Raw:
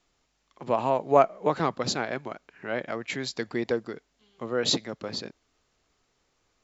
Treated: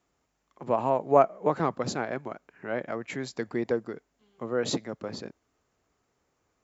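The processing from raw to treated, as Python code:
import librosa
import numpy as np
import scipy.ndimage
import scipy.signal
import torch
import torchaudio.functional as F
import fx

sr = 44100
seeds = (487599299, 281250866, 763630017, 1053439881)

y = scipy.signal.sosfilt(scipy.signal.butter(2, 54.0, 'highpass', fs=sr, output='sos'), x)
y = fx.peak_eq(y, sr, hz=3900.0, db=-10.0, octaves=1.6)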